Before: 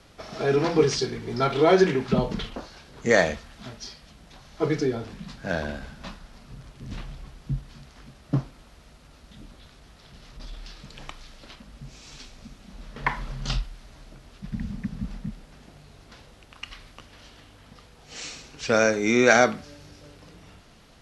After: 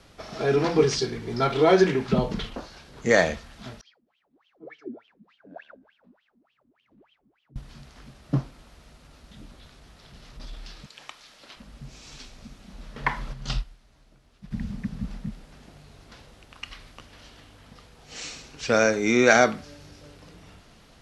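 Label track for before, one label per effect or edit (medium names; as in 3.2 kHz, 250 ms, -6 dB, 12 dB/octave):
3.810000	7.560000	wah-wah 3.4 Hz 230–3200 Hz, Q 16
10.850000	11.560000	high-pass 1.3 kHz -> 410 Hz 6 dB/octave
13.330000	14.510000	upward expansion, over -45 dBFS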